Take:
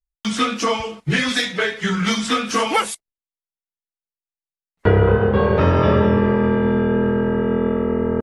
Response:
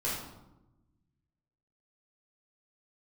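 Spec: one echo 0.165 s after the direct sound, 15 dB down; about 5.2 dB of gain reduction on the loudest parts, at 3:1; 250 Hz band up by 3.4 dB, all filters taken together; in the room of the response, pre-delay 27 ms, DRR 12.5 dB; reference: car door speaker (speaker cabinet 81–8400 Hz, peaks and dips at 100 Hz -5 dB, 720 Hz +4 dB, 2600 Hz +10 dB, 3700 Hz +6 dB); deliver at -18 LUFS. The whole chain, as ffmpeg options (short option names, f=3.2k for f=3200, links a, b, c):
-filter_complex "[0:a]equalizer=f=250:t=o:g=4.5,acompressor=threshold=-16dB:ratio=3,aecho=1:1:165:0.178,asplit=2[a][b];[1:a]atrim=start_sample=2205,adelay=27[c];[b][c]afir=irnorm=-1:irlink=0,volume=-19dB[d];[a][d]amix=inputs=2:normalize=0,highpass=81,equalizer=f=100:t=q:w=4:g=-5,equalizer=f=720:t=q:w=4:g=4,equalizer=f=2.6k:t=q:w=4:g=10,equalizer=f=3.7k:t=q:w=4:g=6,lowpass=f=8.4k:w=0.5412,lowpass=f=8.4k:w=1.3066,volume=0.5dB"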